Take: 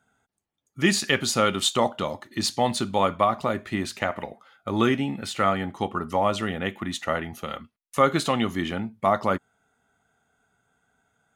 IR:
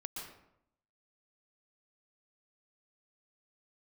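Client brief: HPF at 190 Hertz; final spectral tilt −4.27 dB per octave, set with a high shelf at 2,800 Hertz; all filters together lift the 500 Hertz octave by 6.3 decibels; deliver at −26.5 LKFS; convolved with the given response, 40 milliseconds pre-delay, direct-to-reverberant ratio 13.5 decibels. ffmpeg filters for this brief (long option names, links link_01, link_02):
-filter_complex "[0:a]highpass=190,equalizer=frequency=500:width_type=o:gain=8,highshelf=frequency=2800:gain=-3.5,asplit=2[link_01][link_02];[1:a]atrim=start_sample=2205,adelay=40[link_03];[link_02][link_03]afir=irnorm=-1:irlink=0,volume=-12dB[link_04];[link_01][link_04]amix=inputs=2:normalize=0,volume=-4dB"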